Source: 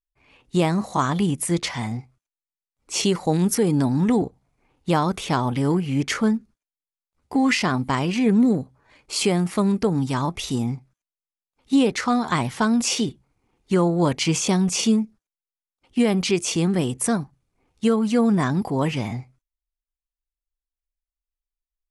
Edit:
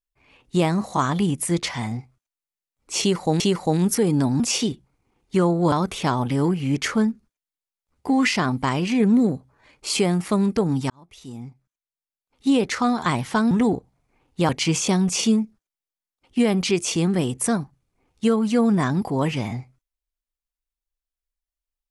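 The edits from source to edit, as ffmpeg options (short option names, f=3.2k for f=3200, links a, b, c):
-filter_complex "[0:a]asplit=7[a][b][c][d][e][f][g];[a]atrim=end=3.402[h];[b]atrim=start=2.998:end=4.002[i];[c]atrim=start=12.768:end=14.092[j];[d]atrim=start=4.978:end=10.16,asetpts=PTS-STARTPTS,afade=t=out:st=5.178:d=0.004:c=hsin[k];[e]atrim=start=10.16:end=12.772,asetpts=PTS-STARTPTS,afade=t=in:d=1.82[l];[f]atrim=start=3.998:end=4.982[m];[g]atrim=start=14.088[n];[h][i]acrossfade=d=0.004:c1=hsin:c2=hsin[o];[o][j]acrossfade=d=0.004:c1=hsin:c2=hsin[p];[k][l]concat=n=2:v=0:a=1[q];[p][q]acrossfade=d=0.004:c1=hsin:c2=hsin[r];[r][m]acrossfade=d=0.004:c1=hsin:c2=hsin[s];[s][n]acrossfade=d=0.004:c1=hsin:c2=hsin"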